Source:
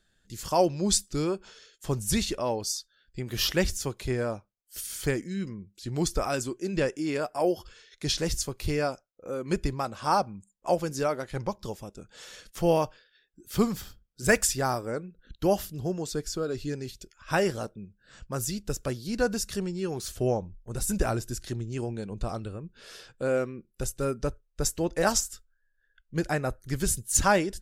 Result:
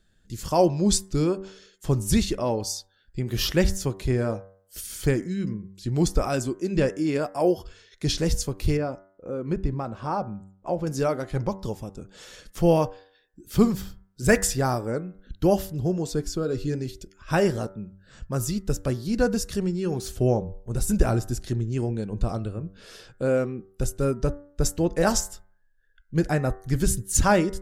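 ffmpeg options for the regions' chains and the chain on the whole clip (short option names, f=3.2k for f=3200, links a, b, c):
-filter_complex "[0:a]asettb=1/sr,asplit=3[a][b][c];[a]atrim=end=8.774[d];[b]atrim=start=8.77:end=10.87,asetpts=PTS-STARTPTS,afade=t=in:d=0.004:c=qsin,afade=t=out:st=2.096:d=0.004:c=qsin,lowpass=f=1.6k:p=1,acompressor=threshold=-32dB:ratio=1.5:attack=3.2:release=140:knee=1:detection=peak[e];[c]atrim=start=10.866[f];[d][e]acrossfade=d=0.004:c1=hsin:c2=qsin[g];[g][f]acrossfade=d=0.004:c1=qsin:c2=hsin,lowshelf=f=460:g=8,bandreject=f=96.13:t=h:w=4,bandreject=f=192.26:t=h:w=4,bandreject=f=288.39:t=h:w=4,bandreject=f=384.52:t=h:w=4,bandreject=f=480.65:t=h:w=4,bandreject=f=576.78:t=h:w=4,bandreject=f=672.91:t=h:w=4,bandreject=f=769.04:t=h:w=4,bandreject=f=865.17:t=h:w=4,bandreject=f=961.3:t=h:w=4,bandreject=f=1.05743k:t=h:w=4,bandreject=f=1.15356k:t=h:w=4,bandreject=f=1.24969k:t=h:w=4,bandreject=f=1.34582k:t=h:w=4,bandreject=f=1.44195k:t=h:w=4,bandreject=f=1.53808k:t=h:w=4,bandreject=f=1.63421k:t=h:w=4,bandreject=f=1.73034k:t=h:w=4,bandreject=f=1.82647k:t=h:w=4,bandreject=f=1.9226k:t=h:w=4,bandreject=f=2.01873k:t=h:w=4,bandreject=f=2.11486k:t=h:w=4"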